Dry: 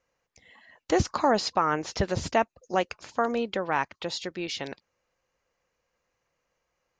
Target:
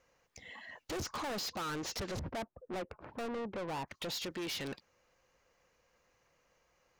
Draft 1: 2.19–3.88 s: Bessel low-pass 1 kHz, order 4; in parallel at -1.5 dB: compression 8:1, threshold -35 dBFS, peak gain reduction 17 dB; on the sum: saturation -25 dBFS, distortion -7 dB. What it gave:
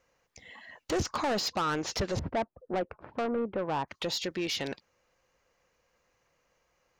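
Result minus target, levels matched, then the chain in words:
saturation: distortion -5 dB
2.19–3.88 s: Bessel low-pass 1 kHz, order 4; in parallel at -1.5 dB: compression 8:1, threshold -35 dBFS, peak gain reduction 17 dB; on the sum: saturation -36.5 dBFS, distortion -1 dB

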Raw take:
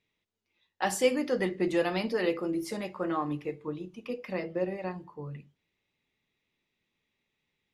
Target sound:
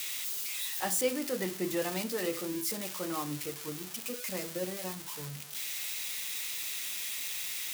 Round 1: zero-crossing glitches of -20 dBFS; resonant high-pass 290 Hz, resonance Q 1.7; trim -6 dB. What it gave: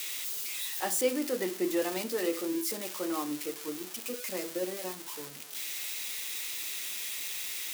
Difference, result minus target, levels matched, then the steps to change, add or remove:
125 Hz band -9.5 dB
change: resonant high-pass 99 Hz, resonance Q 1.7

